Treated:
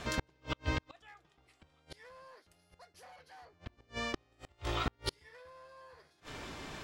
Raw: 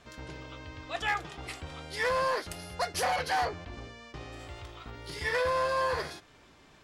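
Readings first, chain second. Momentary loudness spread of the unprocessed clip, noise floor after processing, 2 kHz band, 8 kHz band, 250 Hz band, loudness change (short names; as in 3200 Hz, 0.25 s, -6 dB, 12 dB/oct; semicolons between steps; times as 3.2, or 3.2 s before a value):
17 LU, -71 dBFS, -10.5 dB, -8.5 dB, +1.0 dB, -8.5 dB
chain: flipped gate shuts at -33 dBFS, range -39 dB; gain +12.5 dB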